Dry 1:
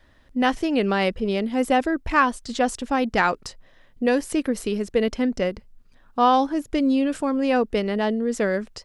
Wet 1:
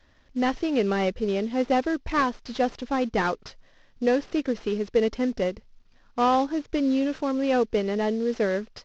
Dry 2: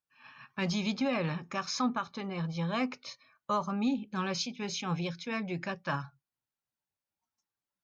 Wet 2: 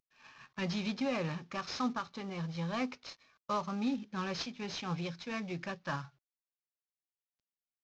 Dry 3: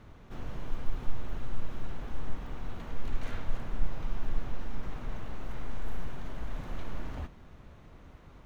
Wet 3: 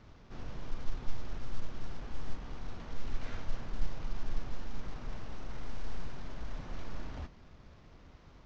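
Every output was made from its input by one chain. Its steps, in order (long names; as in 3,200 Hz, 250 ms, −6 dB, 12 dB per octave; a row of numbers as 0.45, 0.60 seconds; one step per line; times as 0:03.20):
variable-slope delta modulation 32 kbit/s
dynamic equaliser 440 Hz, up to +4 dB, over −36 dBFS, Q 2.5
level −3.5 dB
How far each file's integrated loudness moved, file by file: −3.0, −3.5, −3.5 LU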